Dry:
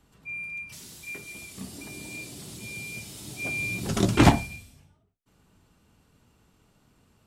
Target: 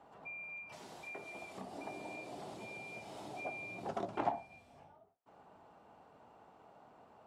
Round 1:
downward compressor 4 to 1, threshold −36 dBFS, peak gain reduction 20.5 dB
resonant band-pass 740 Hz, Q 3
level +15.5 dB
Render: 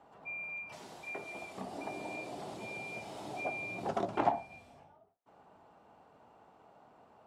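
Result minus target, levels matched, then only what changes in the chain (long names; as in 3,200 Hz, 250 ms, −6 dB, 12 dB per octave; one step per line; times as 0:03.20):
downward compressor: peak gain reduction −5 dB
change: downward compressor 4 to 1, threshold −43 dBFS, peak gain reduction 25.5 dB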